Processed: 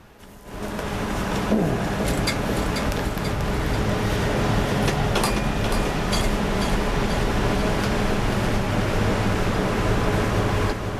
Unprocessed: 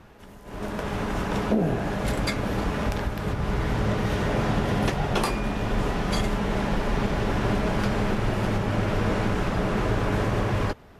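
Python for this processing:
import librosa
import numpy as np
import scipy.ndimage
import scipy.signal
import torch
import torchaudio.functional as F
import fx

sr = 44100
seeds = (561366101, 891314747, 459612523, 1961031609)

y = fx.high_shelf(x, sr, hz=3700.0, db=6.5)
y = fx.echo_feedback(y, sr, ms=487, feedback_pct=59, wet_db=-7)
y = F.gain(torch.from_numpy(y), 1.5).numpy()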